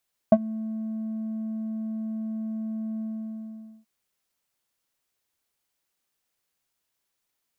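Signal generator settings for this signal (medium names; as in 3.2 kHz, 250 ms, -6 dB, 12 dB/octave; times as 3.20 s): synth note square A3 12 dB/octave, low-pass 350 Hz, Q 4.7, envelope 1 oct, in 0.08 s, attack 3.4 ms, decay 0.05 s, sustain -19.5 dB, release 0.85 s, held 2.68 s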